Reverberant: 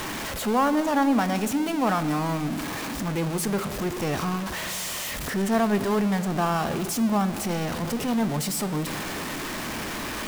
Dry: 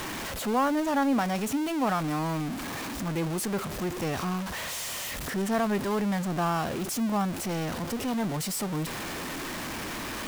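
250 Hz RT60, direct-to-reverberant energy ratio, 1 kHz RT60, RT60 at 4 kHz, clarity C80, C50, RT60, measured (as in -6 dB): 3.2 s, 11.0 dB, 1.9 s, 1.2 s, 14.0 dB, 13.0 dB, 2.2 s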